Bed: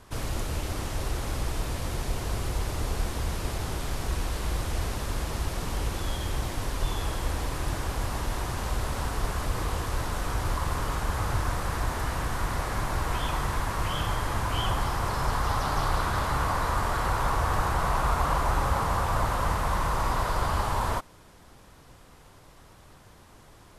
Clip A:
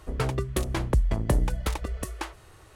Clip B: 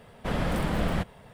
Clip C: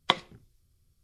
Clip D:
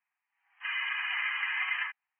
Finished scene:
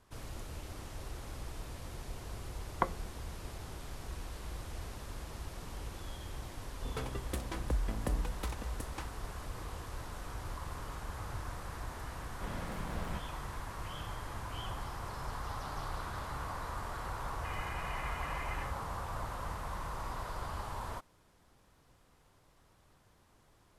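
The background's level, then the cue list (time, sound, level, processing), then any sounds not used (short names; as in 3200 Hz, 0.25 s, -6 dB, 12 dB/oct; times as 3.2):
bed -13.5 dB
2.72 add C -3.5 dB + LPF 1500 Hz 24 dB/oct
6.77 add A -11.5 dB + comb 4 ms, depth 41%
12.16 add B -15 dB
16.8 add D -14.5 dB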